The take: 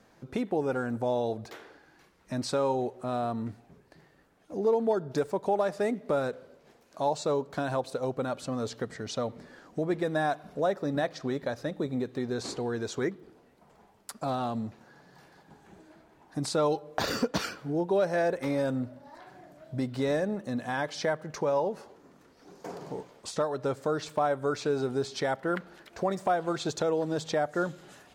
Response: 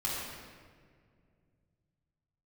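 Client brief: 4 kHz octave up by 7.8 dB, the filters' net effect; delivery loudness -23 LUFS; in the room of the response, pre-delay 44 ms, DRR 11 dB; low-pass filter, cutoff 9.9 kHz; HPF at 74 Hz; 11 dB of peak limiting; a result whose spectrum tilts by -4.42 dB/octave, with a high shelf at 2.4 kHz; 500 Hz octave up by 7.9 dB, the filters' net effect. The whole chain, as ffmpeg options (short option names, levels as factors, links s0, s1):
-filter_complex "[0:a]highpass=74,lowpass=9900,equalizer=f=500:t=o:g=9,highshelf=f=2400:g=7,equalizer=f=4000:t=o:g=3,alimiter=limit=0.106:level=0:latency=1,asplit=2[s0][s1];[1:a]atrim=start_sample=2205,adelay=44[s2];[s1][s2]afir=irnorm=-1:irlink=0,volume=0.141[s3];[s0][s3]amix=inputs=2:normalize=0,volume=2"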